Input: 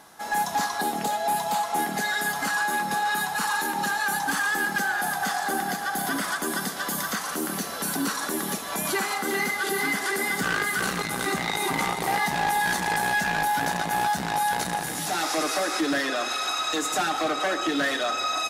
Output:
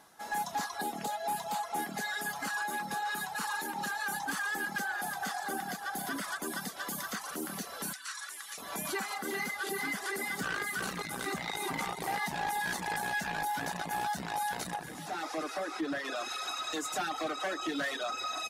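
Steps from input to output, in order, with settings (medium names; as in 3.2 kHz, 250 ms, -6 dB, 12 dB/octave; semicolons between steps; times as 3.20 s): 7.93–8.58 s: Chebyshev band-pass 1.6–9 kHz, order 2; reverb removal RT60 0.56 s; 14.76–16.05 s: treble shelf 3.5 kHz -10.5 dB; trim -8 dB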